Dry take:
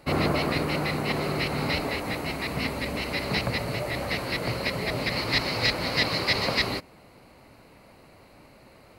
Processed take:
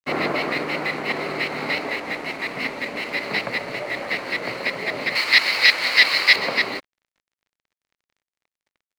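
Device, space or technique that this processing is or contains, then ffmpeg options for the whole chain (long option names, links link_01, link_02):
pocket radio on a weak battery: -filter_complex "[0:a]highpass=270,lowpass=4500,aeval=exprs='sgn(val(0))*max(abs(val(0))-0.00501,0)':channel_layout=same,equalizer=frequency=2000:width_type=o:width=0.55:gain=5.5,asettb=1/sr,asplit=3[link_01][link_02][link_03];[link_01]atrim=end=5.154[link_04];[link_02]atrim=start=5.15:end=6.36,asetpts=PTS-STARTPTS,afade=type=in:duration=0.004:curve=qsin,afade=type=out:start_time=1.206:duration=0.004:curve=qsin,tiltshelf=frequency=940:gain=-9[link_05];[link_03]atrim=start=6.356[link_06];[link_04][link_05]acrossfade=duration=0.004:curve1=hsin:curve2=qsin[link_07];[link_07][link_06]acrossfade=duration=0.004:curve1=qsin:curve2=hsin,volume=3dB"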